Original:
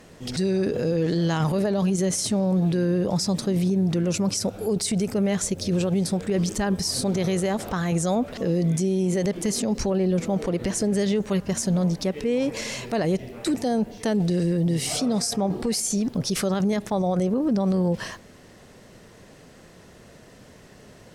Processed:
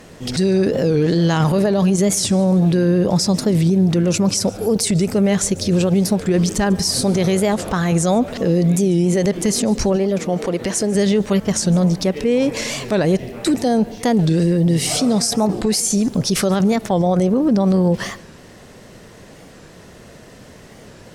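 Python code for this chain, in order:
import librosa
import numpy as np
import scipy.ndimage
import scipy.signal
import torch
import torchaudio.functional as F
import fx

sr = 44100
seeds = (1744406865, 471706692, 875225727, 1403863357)

y = fx.low_shelf(x, sr, hz=170.0, db=-11.0, at=(9.96, 10.95))
y = fx.echo_feedback(y, sr, ms=147, feedback_pct=36, wet_db=-22.0)
y = fx.record_warp(y, sr, rpm=45.0, depth_cents=160.0)
y = F.gain(torch.from_numpy(y), 7.0).numpy()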